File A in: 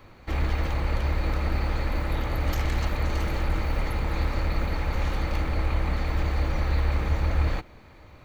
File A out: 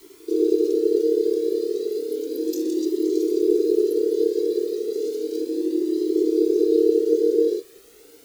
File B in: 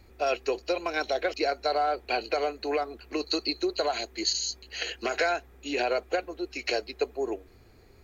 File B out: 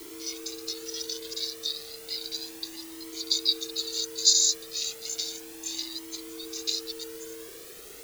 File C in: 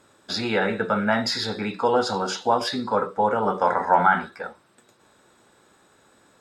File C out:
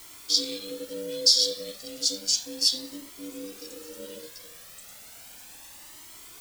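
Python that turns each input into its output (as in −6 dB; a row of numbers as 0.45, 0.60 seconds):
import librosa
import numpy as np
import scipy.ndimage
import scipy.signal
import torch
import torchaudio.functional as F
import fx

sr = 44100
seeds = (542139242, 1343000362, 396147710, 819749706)

y = scipy.signal.sosfilt(scipy.signal.cheby2(4, 60, [290.0, 1700.0], 'bandstop', fs=sr, output='sos'), x)
y = y * np.sin(2.0 * np.pi * 390.0 * np.arange(len(y)) / sr)
y = fx.dmg_noise_colour(y, sr, seeds[0], colour='white', level_db=-61.0)
y = fx.comb_cascade(y, sr, direction='rising', hz=0.33)
y = librosa.util.normalize(y) * 10.0 ** (-6 / 20.0)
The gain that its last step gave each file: +12.0, +19.0, +18.0 decibels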